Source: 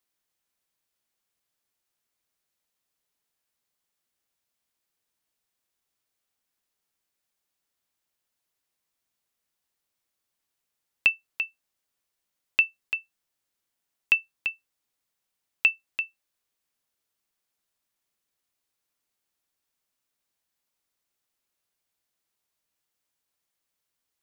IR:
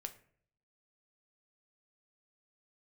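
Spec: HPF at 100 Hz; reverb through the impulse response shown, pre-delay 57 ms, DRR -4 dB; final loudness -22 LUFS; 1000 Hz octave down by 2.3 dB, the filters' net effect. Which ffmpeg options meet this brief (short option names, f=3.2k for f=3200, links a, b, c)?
-filter_complex "[0:a]highpass=100,equalizer=f=1k:t=o:g=-3,asplit=2[a][b];[1:a]atrim=start_sample=2205,adelay=57[c];[b][c]afir=irnorm=-1:irlink=0,volume=7dB[d];[a][d]amix=inputs=2:normalize=0"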